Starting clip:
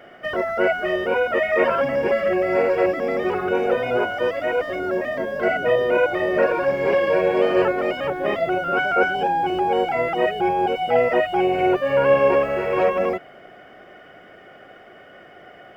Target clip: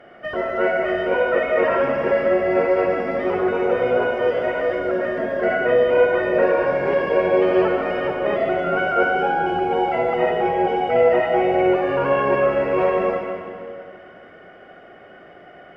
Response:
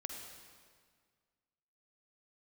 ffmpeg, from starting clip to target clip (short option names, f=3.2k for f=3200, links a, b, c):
-filter_complex "[0:a]lowpass=f=2.5k:p=1[a];[1:a]atrim=start_sample=2205,asetrate=37044,aresample=44100[b];[a][b]afir=irnorm=-1:irlink=0,volume=2dB"